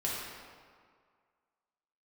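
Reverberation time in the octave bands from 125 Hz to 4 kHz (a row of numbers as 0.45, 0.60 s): 1.7, 1.8, 1.9, 2.0, 1.6, 1.2 s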